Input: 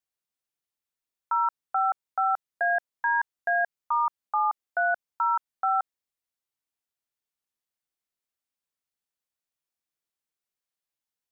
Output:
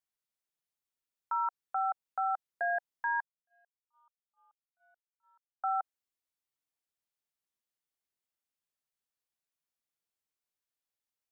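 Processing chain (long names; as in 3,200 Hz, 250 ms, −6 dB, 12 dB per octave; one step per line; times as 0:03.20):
0:03.20–0:05.64: noise gate −18 dBFS, range −58 dB
dynamic equaliser 760 Hz, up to +3 dB, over −35 dBFS, Q 3.7
brickwall limiter −21 dBFS, peak gain reduction 5 dB
level −3.5 dB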